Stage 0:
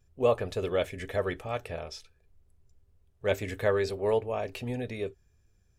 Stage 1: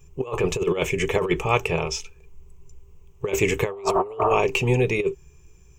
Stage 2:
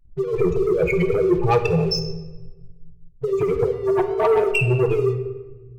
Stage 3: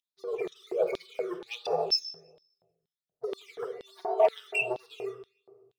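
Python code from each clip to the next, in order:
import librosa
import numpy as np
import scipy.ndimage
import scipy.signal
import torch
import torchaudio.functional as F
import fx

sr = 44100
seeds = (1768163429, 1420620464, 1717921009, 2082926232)

y1 = fx.spec_repair(x, sr, seeds[0], start_s=3.75, length_s=0.56, low_hz=580.0, high_hz=1900.0, source='after')
y1 = fx.ripple_eq(y1, sr, per_octave=0.73, db=14)
y1 = fx.over_compress(y1, sr, threshold_db=-30.0, ratio=-0.5)
y1 = y1 * 10.0 ** (9.0 / 20.0)
y2 = fx.spec_expand(y1, sr, power=3.8)
y2 = fx.leveller(y2, sr, passes=2)
y2 = fx.room_shoebox(y2, sr, seeds[1], volume_m3=790.0, walls='mixed', distance_m=0.72)
y2 = y2 * 10.0 ** (-1.5 / 20.0)
y3 = fx.phaser_stages(y2, sr, stages=12, low_hz=740.0, high_hz=2800.0, hz=1.3, feedback_pct=30)
y3 = fx.filter_lfo_highpass(y3, sr, shape='square', hz=2.1, low_hz=690.0, high_hz=3600.0, q=5.1)
y3 = y3 * 10.0 ** (-6.0 / 20.0)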